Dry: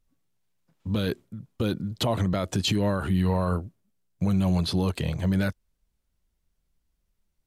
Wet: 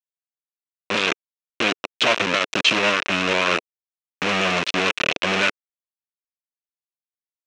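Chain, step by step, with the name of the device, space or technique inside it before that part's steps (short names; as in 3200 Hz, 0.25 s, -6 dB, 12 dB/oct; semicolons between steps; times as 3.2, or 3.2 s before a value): hand-held game console (bit-crush 4-bit; speaker cabinet 430–5600 Hz, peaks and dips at 450 Hz -3 dB, 830 Hz -10 dB, 2600 Hz +8 dB, 4700 Hz -6 dB); gain +8.5 dB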